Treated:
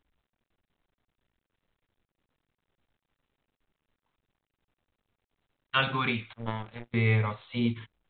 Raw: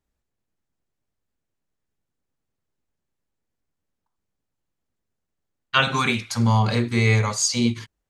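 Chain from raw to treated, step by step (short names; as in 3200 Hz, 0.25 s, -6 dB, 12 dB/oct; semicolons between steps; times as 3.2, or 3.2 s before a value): 6.33–6.94 power-law curve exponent 3; low shelf 61 Hz +5.5 dB; gain -7 dB; µ-law 64 kbps 8000 Hz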